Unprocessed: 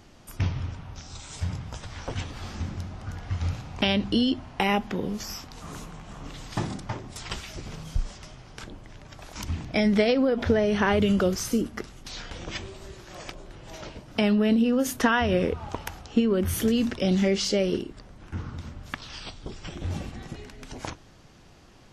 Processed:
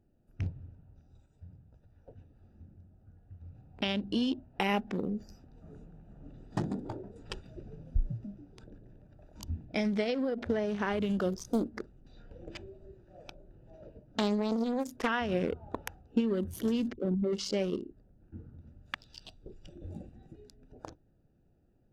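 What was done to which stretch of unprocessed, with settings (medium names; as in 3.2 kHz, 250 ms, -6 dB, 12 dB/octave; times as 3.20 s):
1.26–3.55 s: gain -5 dB
6.05–9.07 s: frequency-shifting echo 141 ms, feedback 46%, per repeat +86 Hz, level -8 dB
11.33–15.08 s: loudspeaker Doppler distortion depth 0.65 ms
16.93–17.33 s: resonances exaggerated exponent 3
18.67–20.54 s: treble shelf 2.8 kHz +10.5 dB
whole clip: local Wiener filter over 41 samples; spectral noise reduction 8 dB; gain riding within 4 dB 0.5 s; trim -5.5 dB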